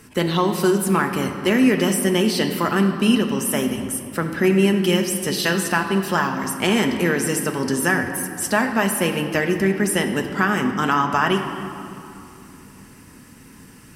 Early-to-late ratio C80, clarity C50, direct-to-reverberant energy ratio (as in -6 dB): 8.0 dB, 7.0 dB, 4.0 dB